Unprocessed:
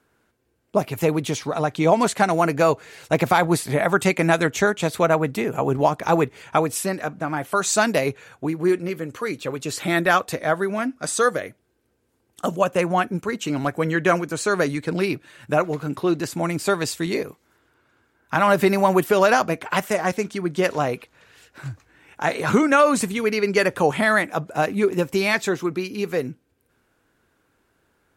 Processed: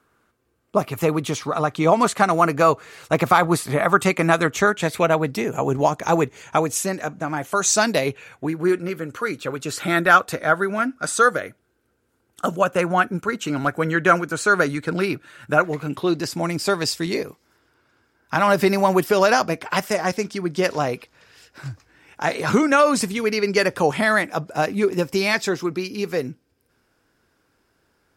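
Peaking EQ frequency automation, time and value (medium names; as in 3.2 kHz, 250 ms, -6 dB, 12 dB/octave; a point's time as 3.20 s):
peaking EQ +10 dB 0.28 oct
4.66 s 1.2 kHz
5.46 s 6.6 kHz
7.64 s 6.6 kHz
8.60 s 1.4 kHz
15.58 s 1.4 kHz
16.20 s 5.1 kHz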